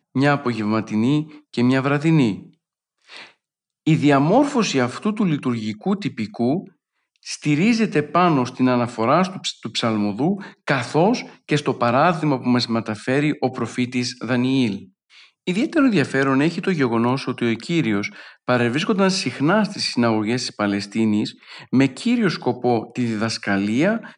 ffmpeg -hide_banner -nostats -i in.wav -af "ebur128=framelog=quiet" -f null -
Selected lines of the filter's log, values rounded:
Integrated loudness:
  I:         -20.3 LUFS
  Threshold: -30.7 LUFS
Loudness range:
  LRA:         1.9 LU
  Threshold: -40.8 LUFS
  LRA low:   -22.0 LUFS
  LRA high:  -20.1 LUFS